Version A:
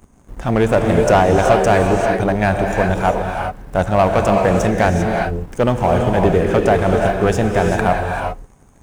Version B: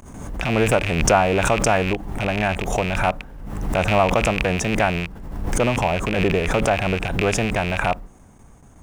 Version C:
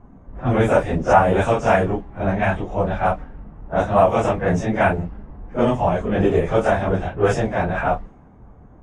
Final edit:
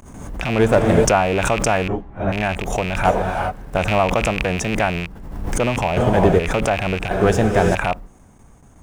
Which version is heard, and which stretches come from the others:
B
0.59–1.05 from A
1.88–2.32 from C
3.05–3.77 from A
5.97–6.39 from A
7.11–7.75 from A

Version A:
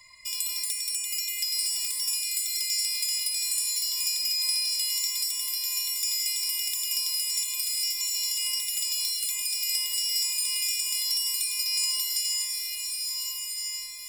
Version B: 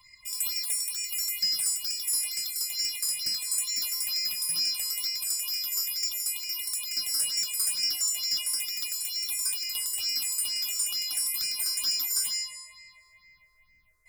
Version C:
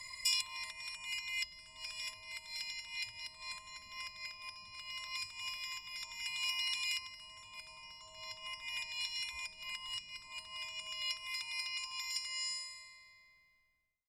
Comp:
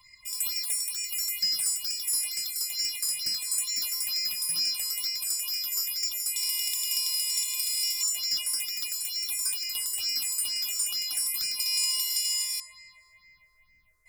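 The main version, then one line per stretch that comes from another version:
B
6.36–8.03 from A
11.6–12.6 from A
not used: C

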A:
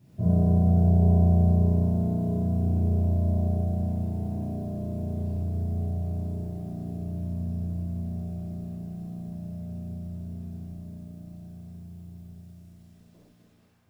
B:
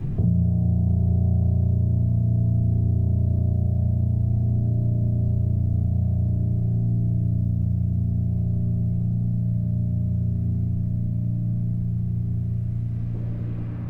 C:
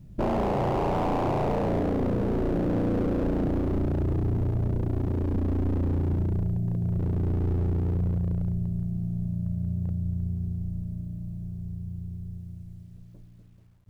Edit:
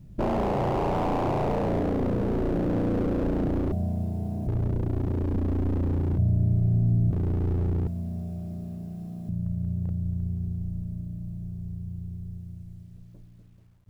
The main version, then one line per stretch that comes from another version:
C
3.72–4.47 from A
6.18–7.11 from B
7.87–9.29 from A

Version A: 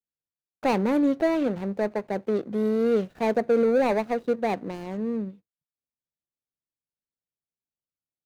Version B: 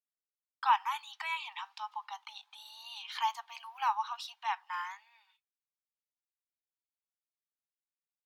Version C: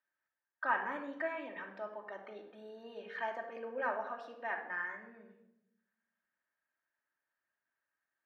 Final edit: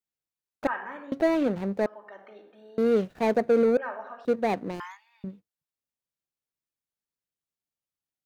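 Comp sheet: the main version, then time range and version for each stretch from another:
A
0.67–1.12 from C
1.86–2.78 from C
3.77–4.25 from C
4.8–5.24 from B

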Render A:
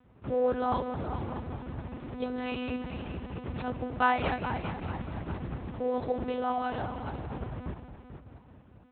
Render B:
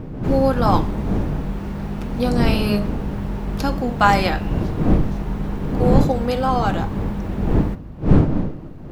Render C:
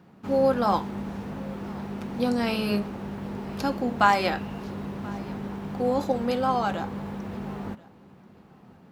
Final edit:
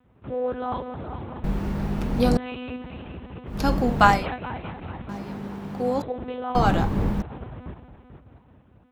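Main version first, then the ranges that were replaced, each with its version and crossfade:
A
1.44–2.37 from B
3.57–4.15 from B, crossfade 0.24 s
5.09–6.02 from C
6.55–7.22 from B

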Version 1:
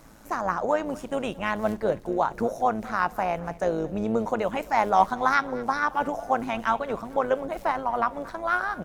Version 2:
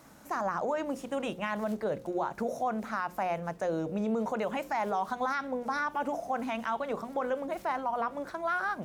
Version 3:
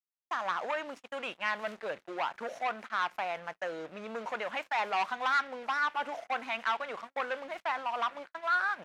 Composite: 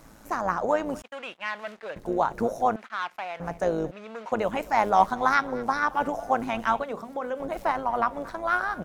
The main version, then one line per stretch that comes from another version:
1
1.02–1.96 from 3
2.76–3.4 from 3
3.91–4.32 from 3
6.84–7.4 from 2

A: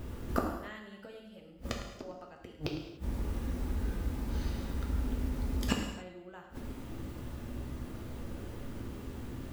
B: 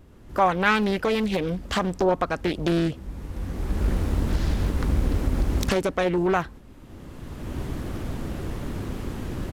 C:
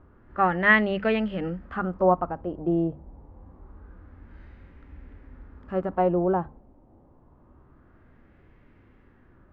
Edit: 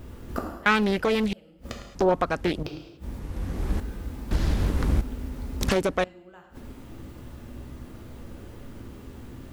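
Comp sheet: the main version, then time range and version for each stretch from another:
A
0.66–1.33 from B
1.95–2.63 from B
3.19–3.8 from B
4.31–5.01 from B
5.61–6.04 from B
not used: C

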